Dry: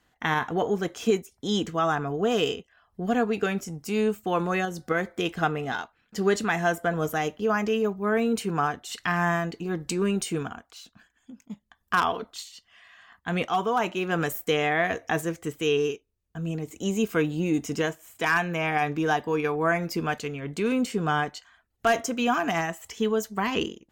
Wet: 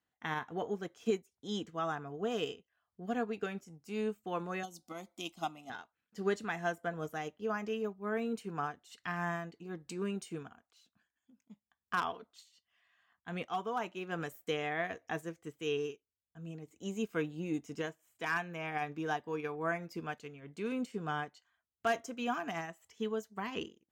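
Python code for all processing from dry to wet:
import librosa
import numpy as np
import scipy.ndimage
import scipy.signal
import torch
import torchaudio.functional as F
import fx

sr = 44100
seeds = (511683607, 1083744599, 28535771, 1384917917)

y = fx.chain(x, sr, fx.high_shelf(hz=2400.0, db=11.5),
    fx.fixed_phaser(hz=450.0, stages=6), at=(4.63, 5.7))
y = scipy.signal.sosfilt(scipy.signal.butter(2, 74.0, 'highpass', fs=sr, output='sos'), y)
y = fx.high_shelf(y, sr, hz=9300.0, db=-4.0)
y = fx.upward_expand(y, sr, threshold_db=-40.0, expansion=1.5)
y = y * librosa.db_to_amplitude(-8.5)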